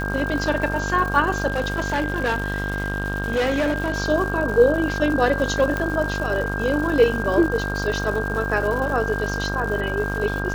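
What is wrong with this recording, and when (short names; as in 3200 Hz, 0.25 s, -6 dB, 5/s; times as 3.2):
buzz 50 Hz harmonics 32 -27 dBFS
crackle 280/s -29 dBFS
tone 1600 Hz -28 dBFS
1.47–3.96 clipped -17.5 dBFS
5.77 pop -12 dBFS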